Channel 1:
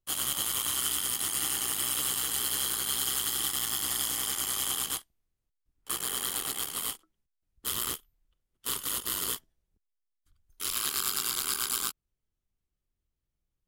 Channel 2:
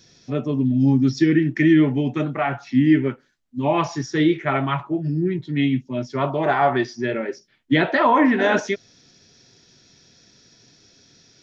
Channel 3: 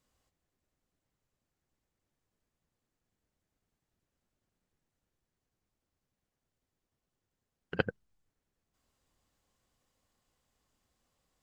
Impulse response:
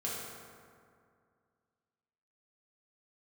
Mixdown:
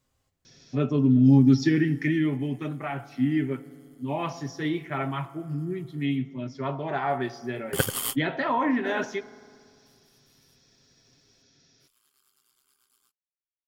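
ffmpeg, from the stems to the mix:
-filter_complex "[0:a]bandreject=f=3.9k:w=12,adelay=1200,volume=3dB[a];[1:a]adelay=450,volume=-2.5dB,afade=t=out:st=1.49:d=0.76:silence=0.421697,asplit=2[b][c];[c]volume=-18.5dB[d];[2:a]equalizer=f=85:w=1.1:g=7.5,volume=2.5dB,asplit=2[e][f];[f]apad=whole_len=655945[g];[a][g]sidechaingate=range=-42dB:threshold=-59dB:ratio=16:detection=peak[h];[3:a]atrim=start_sample=2205[i];[d][i]afir=irnorm=-1:irlink=0[j];[h][b][e][j]amix=inputs=4:normalize=0,aecho=1:1:7.5:0.35"

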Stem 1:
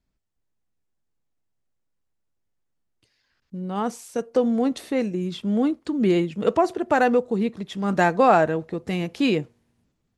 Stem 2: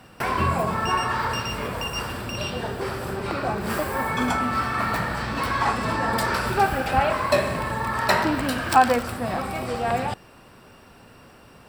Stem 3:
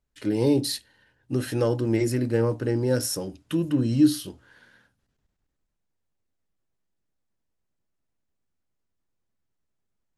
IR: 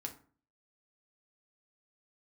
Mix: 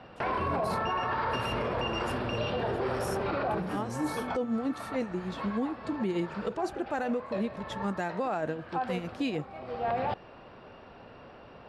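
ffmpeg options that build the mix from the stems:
-filter_complex "[0:a]tremolo=f=6.6:d=0.7,volume=-5dB,asplit=2[a][b];[1:a]lowpass=f=4.2k:w=0.5412,lowpass=f=4.2k:w=1.3066,equalizer=f=610:w=0.94:g=7.5,volume=-4dB[c];[2:a]volume=-14dB,asplit=2[d][e];[e]volume=-16.5dB[f];[b]apad=whole_len=515378[g];[c][g]sidechaincompress=threshold=-42dB:ratio=20:attack=12:release=637[h];[f]aecho=0:1:666:1[i];[a][h][d][i]amix=inputs=4:normalize=0,alimiter=limit=-22.5dB:level=0:latency=1:release=28"

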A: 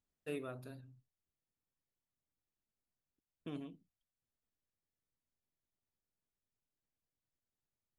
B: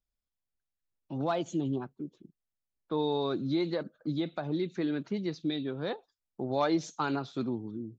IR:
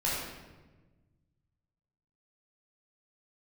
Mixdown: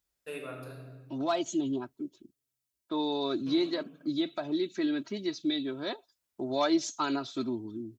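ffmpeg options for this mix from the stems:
-filter_complex "[0:a]lowshelf=f=430:g=-9,bandreject=f=50:t=h:w=6,bandreject=f=100:t=h:w=6,bandreject=f=150:t=h:w=6,volume=1dB,asplit=3[a][b][c];[a]atrim=end=2.07,asetpts=PTS-STARTPTS,afade=t=out:st=2.066:d=0.004:c=hsin[d];[b]atrim=start=2.07:end=3.39,asetpts=PTS-STARTPTS,volume=0[e];[c]atrim=start=3.39,asetpts=PTS-STARTPTS,afade=t=in:d=0.004:c=hsin[f];[d][e][f]concat=n=3:v=0:a=1,asplit=2[g][h];[h]volume=-4.5dB[i];[1:a]highshelf=f=3.3k:g=11.5,aecho=1:1:3.1:0.73,volume=-2.5dB,asplit=2[j][k];[k]apad=whole_len=352315[l];[g][l]sidechaincompress=threshold=-35dB:ratio=8:attack=16:release=390[m];[2:a]atrim=start_sample=2205[n];[i][n]afir=irnorm=-1:irlink=0[o];[m][j][o]amix=inputs=3:normalize=0,highpass=43"

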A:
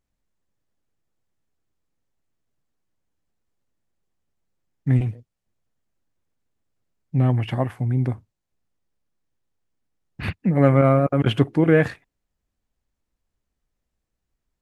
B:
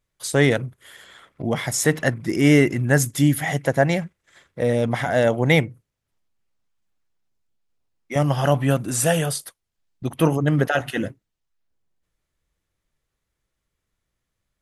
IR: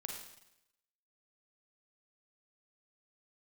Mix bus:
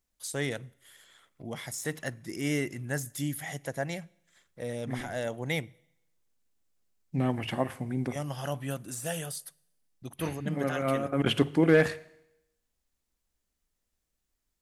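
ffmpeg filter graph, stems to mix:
-filter_complex "[0:a]equalizer=f=120:w=5:g=-13,bandreject=f=50:t=h:w=6,bandreject=f=100:t=h:w=6,bandreject=f=150:t=h:w=6,volume=-5.5dB,asplit=2[a][b];[b]volume=-12.5dB[c];[1:a]deesser=0.45,volume=-16dB,asplit=3[d][e][f];[e]volume=-20.5dB[g];[f]apad=whole_len=644537[h];[a][h]sidechaincompress=threshold=-49dB:ratio=4:attack=16:release=190[i];[2:a]atrim=start_sample=2205[j];[c][g]amix=inputs=2:normalize=0[k];[k][j]afir=irnorm=-1:irlink=0[l];[i][d][l]amix=inputs=3:normalize=0,highshelf=f=3.7k:g=10.5,asoftclip=type=hard:threshold=-12dB"

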